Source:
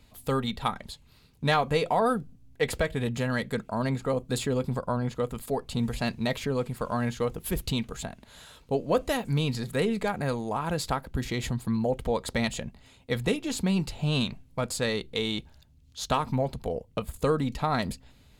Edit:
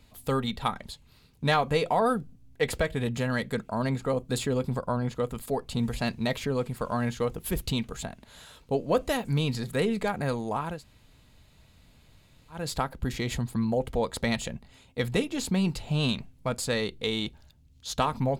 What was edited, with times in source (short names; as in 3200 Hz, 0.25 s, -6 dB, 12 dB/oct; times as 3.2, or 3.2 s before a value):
10.72 insert room tone 1.88 s, crossfade 0.24 s